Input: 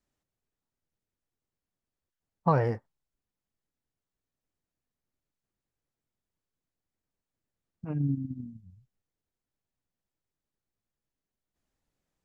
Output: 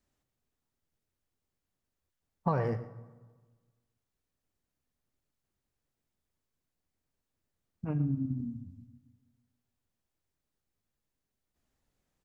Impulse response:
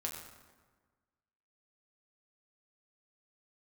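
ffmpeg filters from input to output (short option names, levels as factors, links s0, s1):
-filter_complex "[0:a]acompressor=threshold=0.0282:ratio=2.5,aecho=1:1:115:0.158,asplit=2[s0][s1];[1:a]atrim=start_sample=2205,lowshelf=f=150:g=6[s2];[s1][s2]afir=irnorm=-1:irlink=0,volume=0.355[s3];[s0][s3]amix=inputs=2:normalize=0"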